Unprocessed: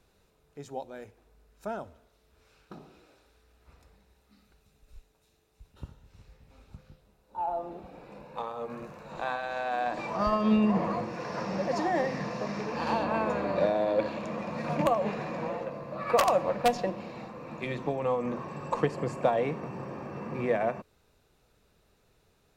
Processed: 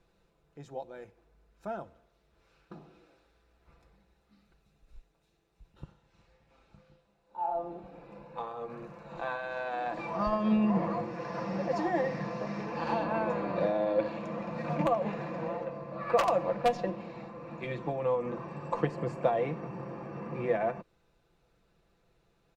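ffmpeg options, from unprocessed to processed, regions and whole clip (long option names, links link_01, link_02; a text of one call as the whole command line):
ffmpeg -i in.wav -filter_complex "[0:a]asettb=1/sr,asplit=3[link_01][link_02][link_03];[link_01]atrim=end=5.844[link_04];[link_02]atrim=start=5.84:end=7.55,asetpts=PTS-STARTPTS,afade=type=in:duration=0.004:curve=qsin,afade=type=out:start_time=1.706:duration=0.004:curve=qsin,lowpass=9900,lowshelf=frequency=220:gain=-11.5,asplit=2[link_05][link_06];[link_06]adelay=35,volume=-7dB[link_07];[link_05][link_07]amix=inputs=2:normalize=0,atrim=end_sample=75411[link_08];[link_03]atrim=start=7.546[link_09];[link_04][link_08]acrossfade=duration=0.004:curve1=hsin:curve2=qsin[link_10];[link_10][link_09]acrossfade=duration=0.004:curve1=qsin:curve2=hsin,lowpass=frequency=3100:poles=1,aecho=1:1:5.9:0.48,volume=-3dB" out.wav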